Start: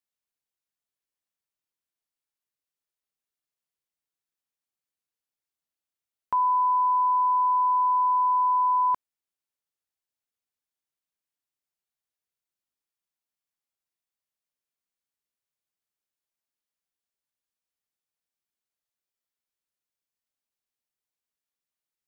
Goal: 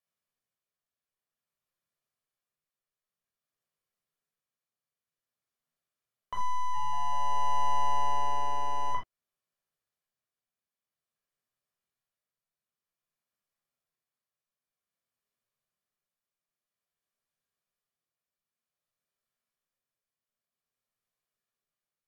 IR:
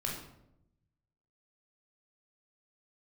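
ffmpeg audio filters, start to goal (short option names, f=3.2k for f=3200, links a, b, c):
-filter_complex "[0:a]equalizer=f=660:w=0.34:g=5.5,alimiter=limit=-19.5dB:level=0:latency=1,aeval=exprs='clip(val(0),-1,0.0531)':c=same,tremolo=f=0.52:d=0.38,asettb=1/sr,asplit=3[a][b][c];[a]atrim=end=6.544[d];[b]atrim=start=6.54:end=8.91,asetpts=PTS-STARTPTS,afade=t=in:d=0.004:c=qsin,afade=t=out:st=2.366:d=0.004:c=qsin,asplit=6[e][f][g][h][i][j];[f]adelay=194,afreqshift=-140,volume=-12dB[k];[g]adelay=388,afreqshift=-280,volume=-17.7dB[l];[h]adelay=582,afreqshift=-420,volume=-23.4dB[m];[i]adelay=776,afreqshift=-560,volume=-29dB[n];[j]adelay=970,afreqshift=-700,volume=-34.7dB[o];[e][k][l][m][n][o]amix=inputs=6:normalize=0,atrim=end_sample=104517[p];[c]atrim=start=8.906[q];[d][p]acrossfade=d=0.004:c1=hsin:c2=qsin[r];[r][q]acrossfade=d=0.004:c1=qsin:c2=hsin[s];[1:a]atrim=start_sample=2205,atrim=end_sample=3969[t];[s][t]afir=irnorm=-1:irlink=0,volume=-2.5dB" -ar 44100 -c:a libvorbis -b:a 192k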